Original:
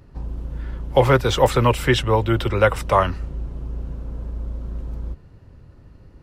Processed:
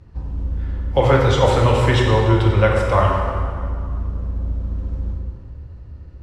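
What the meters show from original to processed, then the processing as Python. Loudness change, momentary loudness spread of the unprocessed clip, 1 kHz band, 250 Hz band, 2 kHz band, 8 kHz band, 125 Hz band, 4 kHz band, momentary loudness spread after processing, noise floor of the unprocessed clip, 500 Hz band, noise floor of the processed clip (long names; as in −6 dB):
+2.0 dB, 16 LU, +1.0 dB, +2.0 dB, +0.5 dB, −2.0 dB, +5.5 dB, 0.0 dB, 16 LU, −47 dBFS, +1.5 dB, −39 dBFS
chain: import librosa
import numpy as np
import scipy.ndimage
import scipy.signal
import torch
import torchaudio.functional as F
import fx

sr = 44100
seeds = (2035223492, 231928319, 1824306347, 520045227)

y = scipy.signal.sosfilt(scipy.signal.butter(2, 7700.0, 'lowpass', fs=sr, output='sos'), x)
y = fx.peak_eq(y, sr, hz=76.0, db=14.0, octaves=0.61)
y = fx.rev_plate(y, sr, seeds[0], rt60_s=2.2, hf_ratio=0.7, predelay_ms=0, drr_db=-1.5)
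y = y * 10.0 ** (-3.0 / 20.0)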